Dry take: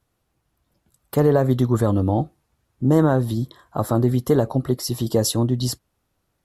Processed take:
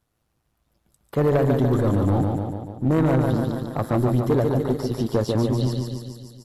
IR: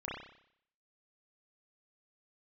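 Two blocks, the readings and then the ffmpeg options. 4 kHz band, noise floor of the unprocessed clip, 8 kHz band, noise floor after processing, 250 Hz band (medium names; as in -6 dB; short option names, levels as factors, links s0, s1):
-7.0 dB, -73 dBFS, under -10 dB, -73 dBFS, -1.0 dB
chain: -filter_complex "[0:a]aecho=1:1:145|290|435|580|725|870|1015|1160:0.562|0.337|0.202|0.121|0.0729|0.0437|0.0262|0.0157,acrossover=split=3600[s0][s1];[s1]acompressor=threshold=0.00562:ratio=4:attack=1:release=60[s2];[s0][s2]amix=inputs=2:normalize=0,asplit=2[s3][s4];[s4]aeval=exprs='sgn(val(0))*max(abs(val(0))-0.0316,0)':c=same,volume=0.398[s5];[s3][s5]amix=inputs=2:normalize=0,tremolo=f=110:d=0.519,asoftclip=type=tanh:threshold=0.224"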